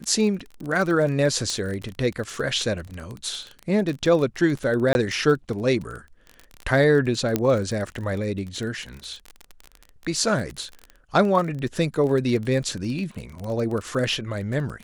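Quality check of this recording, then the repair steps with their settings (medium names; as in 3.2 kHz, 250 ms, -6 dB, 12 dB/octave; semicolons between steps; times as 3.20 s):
crackle 24 per s -28 dBFS
1.50 s: pop -14 dBFS
4.93–4.95 s: dropout 21 ms
7.36 s: pop -7 dBFS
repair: de-click; interpolate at 4.93 s, 21 ms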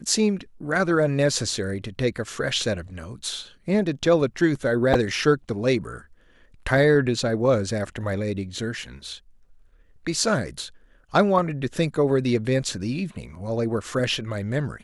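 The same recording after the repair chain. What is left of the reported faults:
nothing left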